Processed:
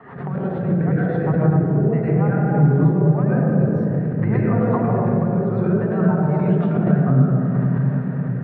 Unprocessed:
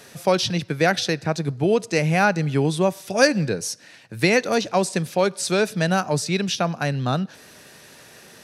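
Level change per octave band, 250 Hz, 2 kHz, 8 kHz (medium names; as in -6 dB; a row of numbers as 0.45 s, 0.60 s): +7.0 dB, -9.5 dB, under -40 dB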